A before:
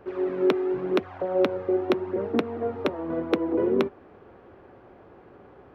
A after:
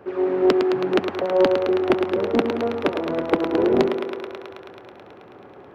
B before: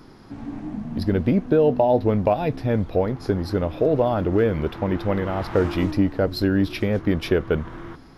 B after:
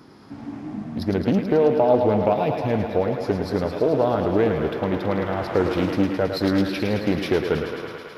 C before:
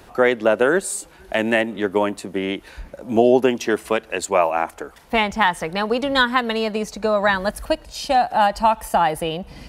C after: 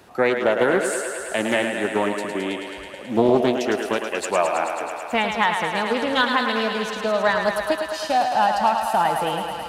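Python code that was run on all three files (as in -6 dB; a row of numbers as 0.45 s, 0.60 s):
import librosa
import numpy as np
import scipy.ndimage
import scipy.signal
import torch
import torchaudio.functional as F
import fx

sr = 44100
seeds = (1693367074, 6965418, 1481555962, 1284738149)

p1 = scipy.signal.sosfilt(scipy.signal.butter(2, 96.0, 'highpass', fs=sr, output='sos'), x)
p2 = p1 + fx.echo_thinned(p1, sr, ms=108, feedback_pct=83, hz=270.0, wet_db=-6.0, dry=0)
p3 = fx.doppler_dist(p2, sr, depth_ms=0.3)
y = p3 * 10.0 ** (-22 / 20.0) / np.sqrt(np.mean(np.square(p3)))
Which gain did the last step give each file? +4.5 dB, -0.5 dB, -3.0 dB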